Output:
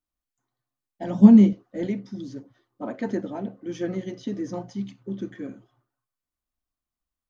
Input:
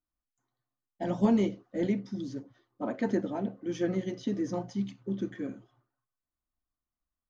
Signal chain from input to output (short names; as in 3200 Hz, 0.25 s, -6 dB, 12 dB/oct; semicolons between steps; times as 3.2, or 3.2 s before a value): 1.13–1.53 bell 210 Hz +14.5 dB 0.56 oct; gain +1 dB